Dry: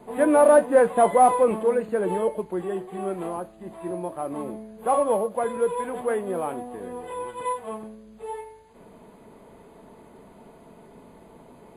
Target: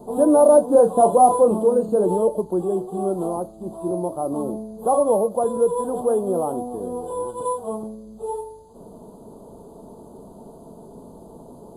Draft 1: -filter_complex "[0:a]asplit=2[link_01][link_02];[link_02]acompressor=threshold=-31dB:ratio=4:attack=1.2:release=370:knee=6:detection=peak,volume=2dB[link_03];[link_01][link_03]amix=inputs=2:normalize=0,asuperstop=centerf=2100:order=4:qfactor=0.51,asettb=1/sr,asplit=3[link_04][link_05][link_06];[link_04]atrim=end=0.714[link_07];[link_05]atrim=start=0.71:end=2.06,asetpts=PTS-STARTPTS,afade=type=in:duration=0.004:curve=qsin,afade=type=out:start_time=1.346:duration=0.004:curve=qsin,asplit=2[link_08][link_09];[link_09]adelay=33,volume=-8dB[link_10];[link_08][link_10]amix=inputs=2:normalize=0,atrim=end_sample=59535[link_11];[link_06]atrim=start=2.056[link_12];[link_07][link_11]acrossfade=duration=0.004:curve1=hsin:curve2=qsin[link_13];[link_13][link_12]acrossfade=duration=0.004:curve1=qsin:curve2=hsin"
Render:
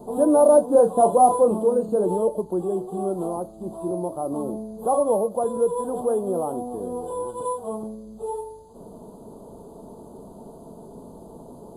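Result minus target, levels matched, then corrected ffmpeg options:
downward compressor: peak gain reduction +8 dB
-filter_complex "[0:a]asplit=2[link_01][link_02];[link_02]acompressor=threshold=-20.5dB:ratio=4:attack=1.2:release=370:knee=6:detection=peak,volume=2dB[link_03];[link_01][link_03]amix=inputs=2:normalize=0,asuperstop=centerf=2100:order=4:qfactor=0.51,asettb=1/sr,asplit=3[link_04][link_05][link_06];[link_04]atrim=end=0.714[link_07];[link_05]atrim=start=0.71:end=2.06,asetpts=PTS-STARTPTS,afade=type=in:duration=0.004:curve=qsin,afade=type=out:start_time=1.346:duration=0.004:curve=qsin,asplit=2[link_08][link_09];[link_09]adelay=33,volume=-8dB[link_10];[link_08][link_10]amix=inputs=2:normalize=0,atrim=end_sample=59535[link_11];[link_06]atrim=start=2.056[link_12];[link_07][link_11]acrossfade=duration=0.004:curve1=hsin:curve2=qsin[link_13];[link_13][link_12]acrossfade=duration=0.004:curve1=qsin:curve2=hsin"

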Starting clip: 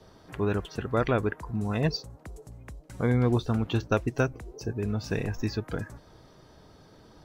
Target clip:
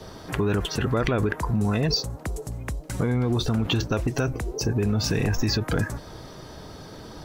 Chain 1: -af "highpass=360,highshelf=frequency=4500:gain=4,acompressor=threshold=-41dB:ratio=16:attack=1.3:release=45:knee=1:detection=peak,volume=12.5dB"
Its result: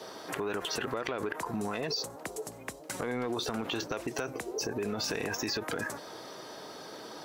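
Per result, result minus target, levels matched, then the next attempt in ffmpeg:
downward compressor: peak gain reduction +8 dB; 500 Hz band +3.5 dB
-af "highpass=360,highshelf=frequency=4500:gain=4,acompressor=threshold=-30.5dB:ratio=16:attack=1.3:release=45:knee=1:detection=peak,volume=12.5dB"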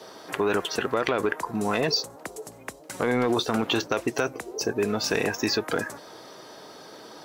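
500 Hz band +3.5 dB
-af "highshelf=frequency=4500:gain=4,acompressor=threshold=-30.5dB:ratio=16:attack=1.3:release=45:knee=1:detection=peak,volume=12.5dB"

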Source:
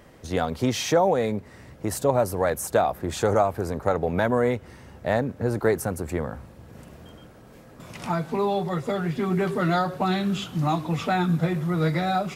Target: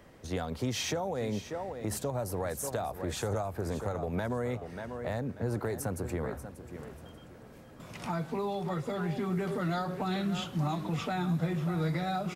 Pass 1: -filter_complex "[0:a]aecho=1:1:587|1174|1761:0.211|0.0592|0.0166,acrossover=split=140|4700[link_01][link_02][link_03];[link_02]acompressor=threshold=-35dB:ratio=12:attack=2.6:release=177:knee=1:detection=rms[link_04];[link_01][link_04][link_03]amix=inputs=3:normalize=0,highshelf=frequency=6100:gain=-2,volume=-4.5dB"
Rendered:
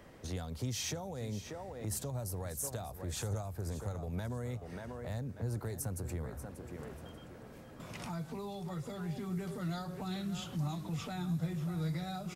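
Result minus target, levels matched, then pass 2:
downward compressor: peak gain reduction +10.5 dB
-filter_complex "[0:a]aecho=1:1:587|1174|1761:0.211|0.0592|0.0166,acrossover=split=140|4700[link_01][link_02][link_03];[link_02]acompressor=threshold=-23.5dB:ratio=12:attack=2.6:release=177:knee=1:detection=rms[link_04];[link_01][link_04][link_03]amix=inputs=3:normalize=0,highshelf=frequency=6100:gain=-2,volume=-4.5dB"

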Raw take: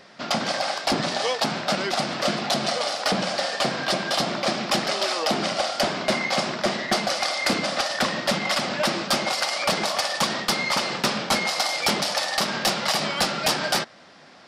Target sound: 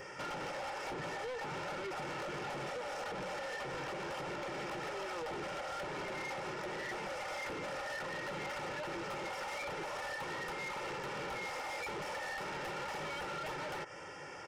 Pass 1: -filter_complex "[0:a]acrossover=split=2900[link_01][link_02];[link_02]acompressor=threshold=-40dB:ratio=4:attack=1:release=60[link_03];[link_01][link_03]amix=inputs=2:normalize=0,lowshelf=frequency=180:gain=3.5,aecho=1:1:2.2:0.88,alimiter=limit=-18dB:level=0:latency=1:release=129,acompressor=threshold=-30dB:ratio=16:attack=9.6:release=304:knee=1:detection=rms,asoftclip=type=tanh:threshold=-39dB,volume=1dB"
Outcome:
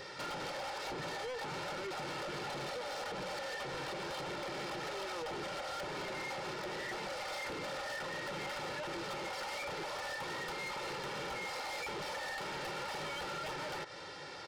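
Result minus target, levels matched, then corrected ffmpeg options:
4,000 Hz band +3.5 dB
-filter_complex "[0:a]acrossover=split=2900[link_01][link_02];[link_02]acompressor=threshold=-40dB:ratio=4:attack=1:release=60[link_03];[link_01][link_03]amix=inputs=2:normalize=0,lowshelf=frequency=180:gain=3.5,aecho=1:1:2.2:0.88,alimiter=limit=-18dB:level=0:latency=1:release=129,acompressor=threshold=-30dB:ratio=16:attack=9.6:release=304:knee=1:detection=rms,asuperstop=centerf=4000:order=4:qfactor=1.8,asoftclip=type=tanh:threshold=-39dB,volume=1dB"

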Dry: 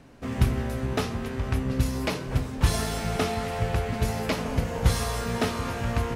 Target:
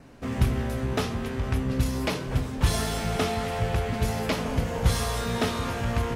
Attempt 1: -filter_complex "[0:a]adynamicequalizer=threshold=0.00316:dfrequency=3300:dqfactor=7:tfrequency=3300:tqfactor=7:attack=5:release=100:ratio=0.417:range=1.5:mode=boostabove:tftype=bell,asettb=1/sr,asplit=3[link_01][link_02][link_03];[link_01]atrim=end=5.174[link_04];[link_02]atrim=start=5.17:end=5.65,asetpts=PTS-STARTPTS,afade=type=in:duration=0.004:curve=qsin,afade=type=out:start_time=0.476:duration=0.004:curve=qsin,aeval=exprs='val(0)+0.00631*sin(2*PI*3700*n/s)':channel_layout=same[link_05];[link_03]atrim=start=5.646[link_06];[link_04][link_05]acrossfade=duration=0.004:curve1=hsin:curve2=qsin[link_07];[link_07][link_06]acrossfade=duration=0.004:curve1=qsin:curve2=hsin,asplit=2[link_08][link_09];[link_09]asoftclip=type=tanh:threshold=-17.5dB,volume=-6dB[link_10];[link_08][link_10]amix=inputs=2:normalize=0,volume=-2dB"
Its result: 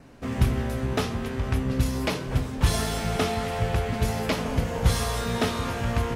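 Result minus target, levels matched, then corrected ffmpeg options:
soft clipping: distortion −6 dB
-filter_complex "[0:a]adynamicequalizer=threshold=0.00316:dfrequency=3300:dqfactor=7:tfrequency=3300:tqfactor=7:attack=5:release=100:ratio=0.417:range=1.5:mode=boostabove:tftype=bell,asettb=1/sr,asplit=3[link_01][link_02][link_03];[link_01]atrim=end=5.174[link_04];[link_02]atrim=start=5.17:end=5.65,asetpts=PTS-STARTPTS,afade=type=in:duration=0.004:curve=qsin,afade=type=out:start_time=0.476:duration=0.004:curve=qsin,aeval=exprs='val(0)+0.00631*sin(2*PI*3700*n/s)':channel_layout=same[link_05];[link_03]atrim=start=5.646[link_06];[link_04][link_05]acrossfade=duration=0.004:curve1=hsin:curve2=qsin[link_07];[link_07][link_06]acrossfade=duration=0.004:curve1=qsin:curve2=hsin,asplit=2[link_08][link_09];[link_09]asoftclip=type=tanh:threshold=-26dB,volume=-6dB[link_10];[link_08][link_10]amix=inputs=2:normalize=0,volume=-2dB"

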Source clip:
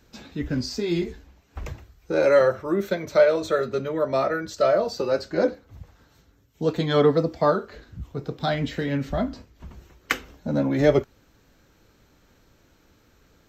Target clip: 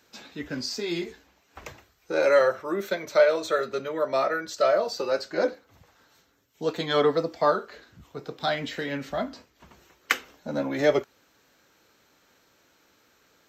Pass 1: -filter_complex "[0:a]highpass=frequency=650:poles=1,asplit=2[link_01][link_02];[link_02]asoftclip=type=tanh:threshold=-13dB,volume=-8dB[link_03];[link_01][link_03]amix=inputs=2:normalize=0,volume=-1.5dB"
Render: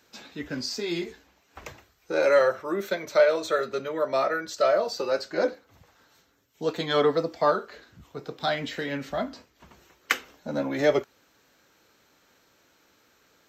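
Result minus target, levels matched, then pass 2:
soft clipping: distortion +19 dB
-filter_complex "[0:a]highpass=frequency=650:poles=1,asplit=2[link_01][link_02];[link_02]asoftclip=type=tanh:threshold=-1.5dB,volume=-8dB[link_03];[link_01][link_03]amix=inputs=2:normalize=0,volume=-1.5dB"

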